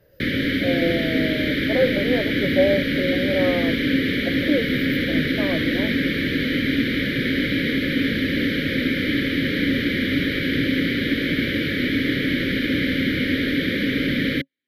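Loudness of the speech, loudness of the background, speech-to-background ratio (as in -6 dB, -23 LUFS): -25.5 LUFS, -21.5 LUFS, -4.0 dB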